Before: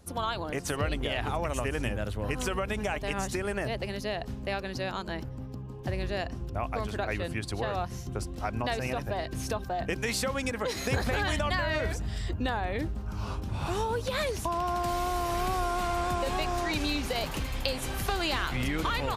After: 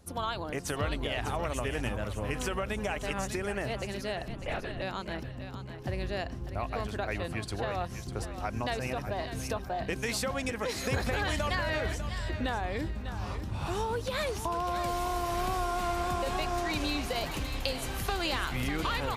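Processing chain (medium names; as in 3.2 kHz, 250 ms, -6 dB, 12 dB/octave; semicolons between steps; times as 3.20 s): 4.28–4.82 s: LPC vocoder at 8 kHz whisper; on a send: thinning echo 598 ms, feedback 33%, level -9.5 dB; on the sum: trim -2 dB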